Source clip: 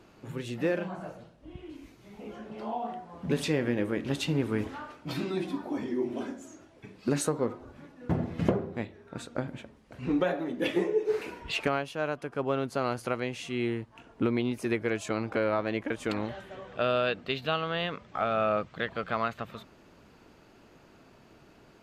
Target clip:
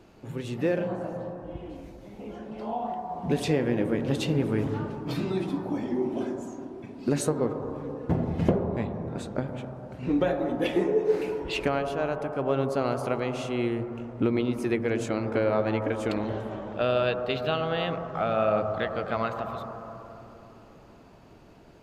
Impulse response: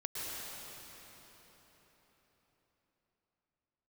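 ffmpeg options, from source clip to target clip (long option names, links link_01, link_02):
-filter_complex "[0:a]asplit=2[link_01][link_02];[link_02]lowpass=frequency=950:width_type=q:width=1.6[link_03];[1:a]atrim=start_sample=2205,asetrate=61740,aresample=44100,lowshelf=frequency=97:gain=11.5[link_04];[link_03][link_04]afir=irnorm=-1:irlink=0,volume=-4dB[link_05];[link_01][link_05]amix=inputs=2:normalize=0"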